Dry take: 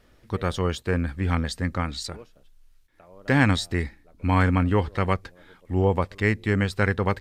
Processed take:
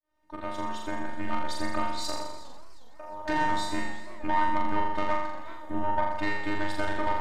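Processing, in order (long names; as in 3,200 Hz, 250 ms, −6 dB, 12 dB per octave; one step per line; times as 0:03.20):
fade in at the beginning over 1.88 s
parametric band 820 Hz +12.5 dB 1.6 octaves
downward compressor 2.5 to 1, threshold −30 dBFS, peak gain reduction 14 dB
tube saturation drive 21 dB, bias 0.65
phases set to zero 307 Hz
on a send: flutter between parallel walls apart 7.1 metres, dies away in 0.97 s
on the sum: feedback echo with a swinging delay time 365 ms, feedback 41%, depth 174 cents, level −19 dB
level +4.5 dB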